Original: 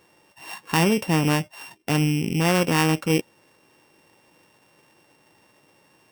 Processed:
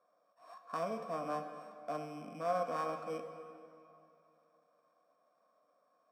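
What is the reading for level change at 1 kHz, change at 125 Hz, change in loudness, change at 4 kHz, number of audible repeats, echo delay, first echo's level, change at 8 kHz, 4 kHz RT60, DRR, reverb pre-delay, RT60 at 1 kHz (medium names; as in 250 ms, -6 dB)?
-10.0 dB, -30.0 dB, -18.0 dB, -29.0 dB, no echo, no echo, no echo, -29.5 dB, 2.0 s, 6.5 dB, 29 ms, 2.7 s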